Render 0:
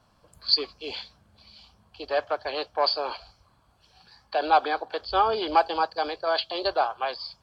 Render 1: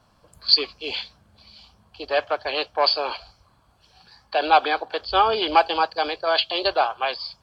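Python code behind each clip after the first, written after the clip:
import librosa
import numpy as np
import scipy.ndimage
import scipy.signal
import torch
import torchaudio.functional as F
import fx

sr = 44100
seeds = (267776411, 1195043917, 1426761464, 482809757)

y = fx.dynamic_eq(x, sr, hz=2700.0, q=1.5, threshold_db=-44.0, ratio=4.0, max_db=8)
y = F.gain(torch.from_numpy(y), 3.0).numpy()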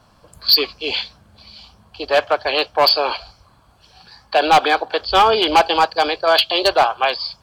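y = np.clip(x, -10.0 ** (-14.0 / 20.0), 10.0 ** (-14.0 / 20.0))
y = F.gain(torch.from_numpy(y), 7.0).numpy()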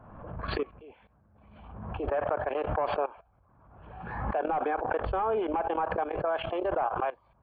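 y = fx.level_steps(x, sr, step_db=19)
y = scipy.ndimage.gaussian_filter1d(y, 5.4, mode='constant')
y = fx.pre_swell(y, sr, db_per_s=43.0)
y = F.gain(torch.from_numpy(y), -6.5).numpy()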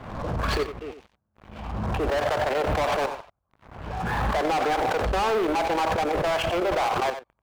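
y = fx.leveller(x, sr, passes=5)
y = y + 10.0 ** (-10.5 / 20.0) * np.pad(y, (int(90 * sr / 1000.0), 0))[:len(y)]
y = F.gain(torch.from_numpy(y), -4.5).numpy()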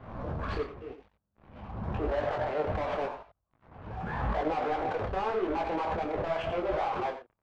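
y = fx.spacing_loss(x, sr, db_at_10k=25)
y = fx.detune_double(y, sr, cents=31)
y = F.gain(torch.from_numpy(y), -1.5).numpy()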